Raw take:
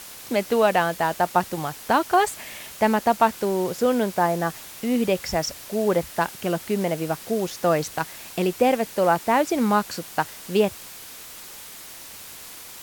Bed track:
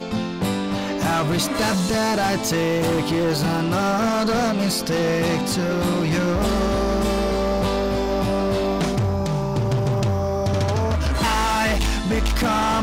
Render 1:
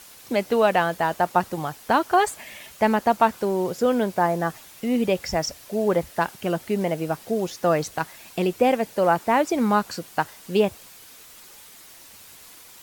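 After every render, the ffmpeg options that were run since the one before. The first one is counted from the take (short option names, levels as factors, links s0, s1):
-af "afftdn=nr=7:nf=-41"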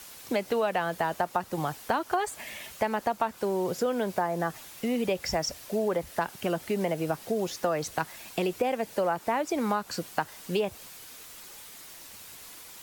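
-filter_complex "[0:a]acrossover=split=360|550|3300[s0][s1][s2][s3];[s0]alimiter=level_in=1.26:limit=0.0631:level=0:latency=1,volume=0.794[s4];[s4][s1][s2][s3]amix=inputs=4:normalize=0,acompressor=threshold=0.0631:ratio=6"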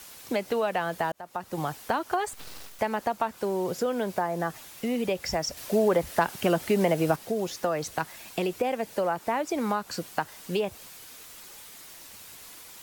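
-filter_complex "[0:a]asettb=1/sr,asplit=3[s0][s1][s2];[s0]atrim=end=2.334[s3];[s1]atrim=start=2.33:end=2.79,asetpts=PTS-STARTPTS,afade=t=in:d=0.004:c=qsin,afade=t=out:st=0.456:d=0.004:c=qsin,aeval=exprs='abs(val(0))':c=same[s4];[s2]atrim=start=2.786[s5];[s3][s4]acrossfade=d=0.004:c1=hsin:c2=qsin[s6];[s6][s5]acrossfade=d=0.004:c1=qsin:c2=hsin,asettb=1/sr,asplit=3[s7][s8][s9];[s7]atrim=end=5.574[s10];[s8]atrim=start=5.57:end=7.16,asetpts=PTS-STARTPTS,afade=t=in:d=0.004:c=qsin,afade=t=out:st=1.586:d=0.004:c=qsin,acontrast=32[s11];[s9]atrim=start=7.156[s12];[s10][s11]acrossfade=d=0.004:c1=hsin:c2=qsin[s13];[s13][s12]acrossfade=d=0.004:c1=qsin:c2=hsin,asplit=2[s14][s15];[s14]atrim=end=1.12,asetpts=PTS-STARTPTS,afade=t=out:st=1.116:d=0.004:c=hsin[s16];[s15]atrim=start=1.12,asetpts=PTS-STARTPTS,afade=t=in:d=0.47[s17];[s16][s17]concat=n=2:v=0:a=1"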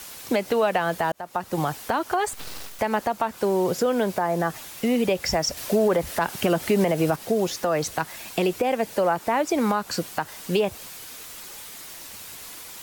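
-af "acontrast=63,alimiter=limit=0.237:level=0:latency=1:release=118"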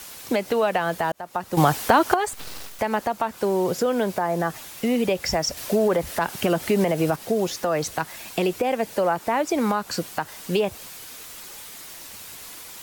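-filter_complex "[0:a]asplit=3[s0][s1][s2];[s0]atrim=end=1.572[s3];[s1]atrim=start=1.568:end=2.142,asetpts=PTS-STARTPTS,volume=2.51[s4];[s2]atrim=start=2.138[s5];[s3][s4]acrossfade=d=0.004:c1=hsin:c2=hsin[s6];[s6][s5]acrossfade=d=0.004:c1=hsin:c2=hsin"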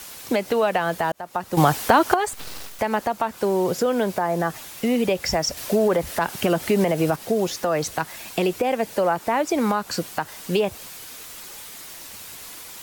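-af "volume=1.12"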